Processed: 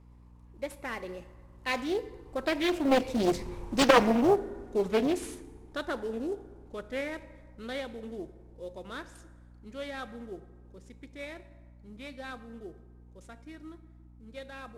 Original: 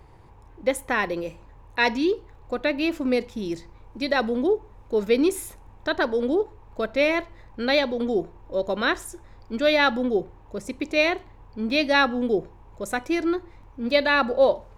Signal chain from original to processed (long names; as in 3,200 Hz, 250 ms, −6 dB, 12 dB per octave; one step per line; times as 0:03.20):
variable-slope delta modulation 64 kbit/s
source passing by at 0:03.56, 23 m/s, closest 7.5 metres
mains hum 60 Hz, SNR 23 dB
dense smooth reverb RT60 1.6 s, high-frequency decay 0.55×, DRR 13 dB
highs frequency-modulated by the lows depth 0.78 ms
level +6.5 dB